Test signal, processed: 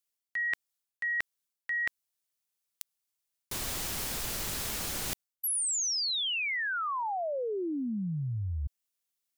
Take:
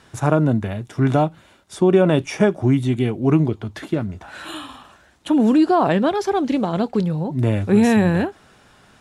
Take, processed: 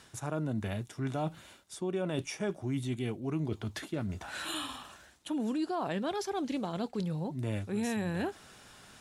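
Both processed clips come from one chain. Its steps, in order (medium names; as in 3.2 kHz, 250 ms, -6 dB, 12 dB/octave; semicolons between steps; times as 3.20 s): treble shelf 3.2 kHz +10 dB; reverse; compression 4:1, threshold -27 dBFS; reverse; trim -5.5 dB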